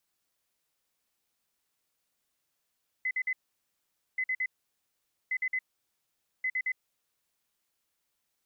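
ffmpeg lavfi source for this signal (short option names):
-f lavfi -i "aevalsrc='0.0447*sin(2*PI*2030*t)*clip(min(mod(mod(t,1.13),0.11),0.06-mod(mod(t,1.13),0.11))/0.005,0,1)*lt(mod(t,1.13),0.33)':d=4.52:s=44100"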